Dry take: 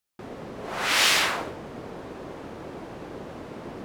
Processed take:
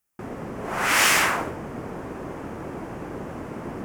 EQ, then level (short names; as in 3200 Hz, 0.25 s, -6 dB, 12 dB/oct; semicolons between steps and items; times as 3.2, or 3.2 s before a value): bell 530 Hz -4 dB 1.3 oct; bell 3900 Hz -13.5 dB 0.88 oct; +6.5 dB